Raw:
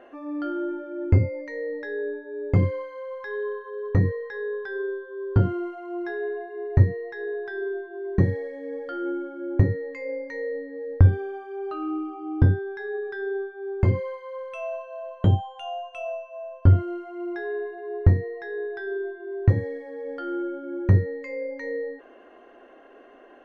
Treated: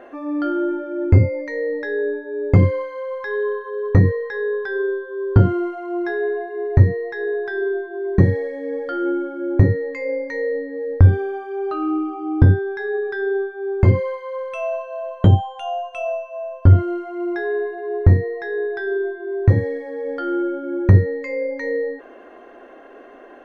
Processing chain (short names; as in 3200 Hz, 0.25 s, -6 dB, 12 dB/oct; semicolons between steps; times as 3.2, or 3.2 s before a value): notch 2900 Hz, Q 11; maximiser +8.5 dB; gain -1 dB